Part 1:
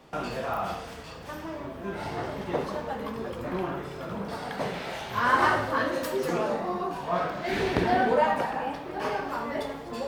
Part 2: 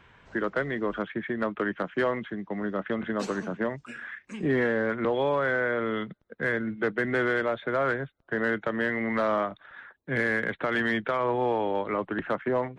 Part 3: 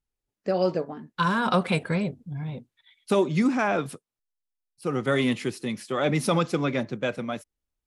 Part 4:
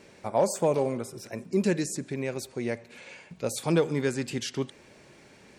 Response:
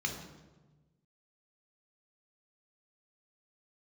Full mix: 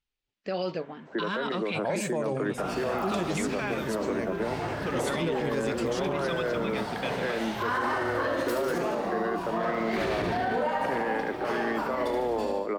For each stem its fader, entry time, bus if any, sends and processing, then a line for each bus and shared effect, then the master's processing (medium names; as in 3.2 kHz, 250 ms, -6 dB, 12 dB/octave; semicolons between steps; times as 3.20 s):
-0.5 dB, 2.45 s, no bus, no send, echo send -6 dB, none
-7.5 dB, 0.80 s, bus A, no send, no echo send, high-pass 210 Hz; peaking EQ 430 Hz +12.5 dB 2.9 oct
-7.5 dB, 0.00 s, bus A, no send, no echo send, low-pass 6.4 kHz 12 dB/octave; peaking EQ 3 kHz +11.5 dB 1.8 oct
-3.5 dB, 1.50 s, no bus, no send, no echo send, none
bus A: 0.0 dB, gain riding within 4 dB 2 s; peak limiter -21.5 dBFS, peak gain reduction 12.5 dB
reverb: none
echo: feedback delay 74 ms, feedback 54%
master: peak limiter -19.5 dBFS, peak gain reduction 10 dB